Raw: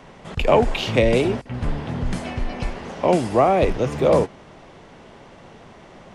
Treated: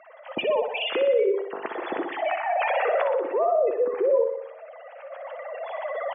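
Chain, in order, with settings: formants replaced by sine waves; recorder AGC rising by 11 dB/s; 2.01–2.63 s: low-pass 2.4 kHz 12 dB/octave; spectral gate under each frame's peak -20 dB strong; high-pass 200 Hz 12 dB/octave; in parallel at -0.5 dB: compression, threshold -24 dBFS, peak gain reduction 13 dB; on the sum: peak limiter -13.5 dBFS, peak gain reduction 10 dB; feedback delay 61 ms, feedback 58%, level -7.5 dB; on a send at -15 dB: reverberation RT60 0.70 s, pre-delay 5 ms; on the sum: trim -4.5 dB

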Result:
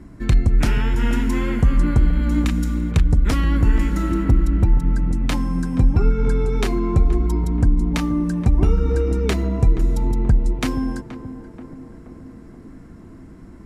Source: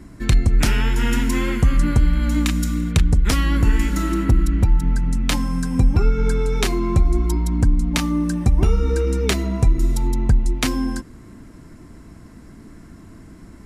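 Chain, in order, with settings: treble shelf 2.4 kHz -9 dB; tape echo 478 ms, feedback 74%, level -9.5 dB, low-pass 1 kHz

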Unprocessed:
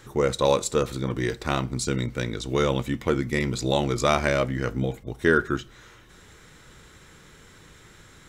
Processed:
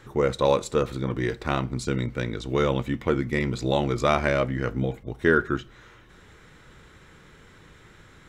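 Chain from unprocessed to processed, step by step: tone controls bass 0 dB, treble -9 dB

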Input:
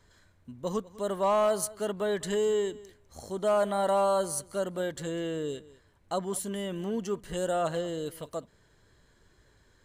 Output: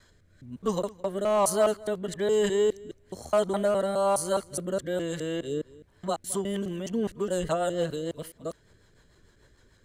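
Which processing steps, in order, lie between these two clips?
time reversed locally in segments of 208 ms; rotary cabinet horn 1.1 Hz, later 6.7 Hz, at 5.85 s; trim +4.5 dB

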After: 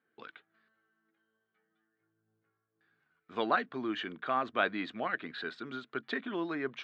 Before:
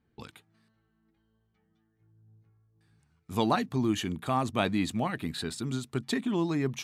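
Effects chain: cabinet simulation 440–3300 Hz, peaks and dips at 870 Hz -8 dB, 1.5 kHz +8 dB, 2.6 kHz -4 dB

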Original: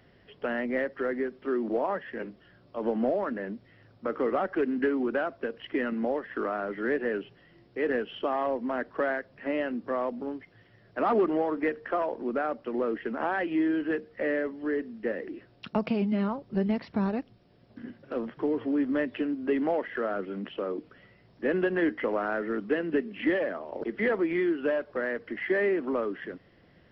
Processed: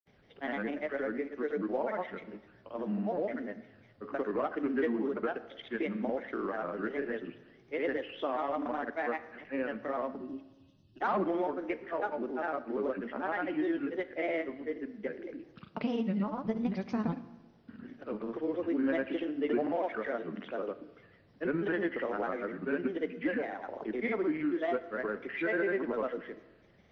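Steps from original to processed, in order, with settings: granulator, pitch spread up and down by 3 st; time-frequency box 10.17–11.01 s, 390–2500 Hz -25 dB; Schroeder reverb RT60 1.2 s, combs from 26 ms, DRR 13.5 dB; trim -3.5 dB

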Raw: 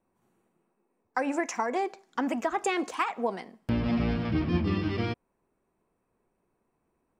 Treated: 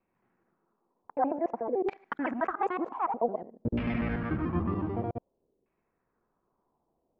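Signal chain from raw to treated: time reversed locally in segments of 73 ms; LFO low-pass saw down 0.53 Hz 430–2500 Hz; trim -3.5 dB

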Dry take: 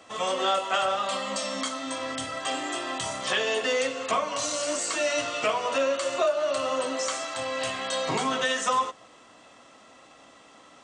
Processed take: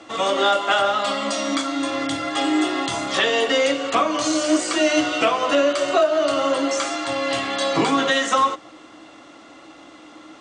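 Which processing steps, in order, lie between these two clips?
low-pass 6.2 kHz 12 dB/octave; peaking EQ 300 Hz +14 dB 0.26 oct; speed mistake 24 fps film run at 25 fps; trim +6.5 dB

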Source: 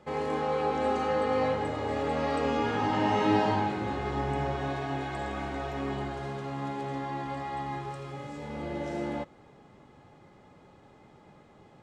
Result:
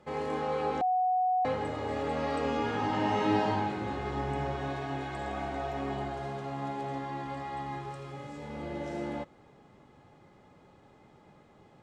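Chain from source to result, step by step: 0.81–1.45 s: bleep 738 Hz -21.5 dBFS; 5.26–6.99 s: peaking EQ 710 Hz +6 dB 0.4 oct; trim -2.5 dB

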